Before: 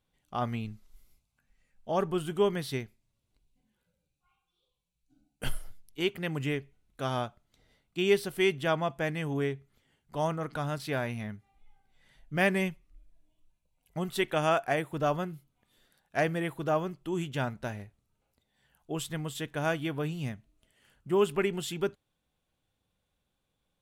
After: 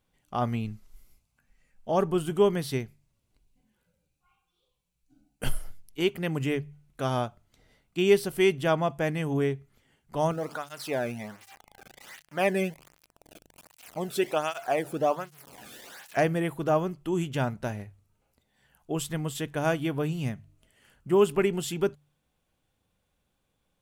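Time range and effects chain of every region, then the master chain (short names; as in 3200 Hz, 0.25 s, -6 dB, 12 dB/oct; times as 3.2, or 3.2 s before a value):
10.31–16.17 zero-crossing step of -41.5 dBFS + tape flanging out of phase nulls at 1.3 Hz, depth 1.1 ms
whole clip: bell 3700 Hz -4 dB 0.42 oct; de-hum 48.89 Hz, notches 3; dynamic EQ 1800 Hz, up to -4 dB, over -46 dBFS, Q 0.95; gain +4.5 dB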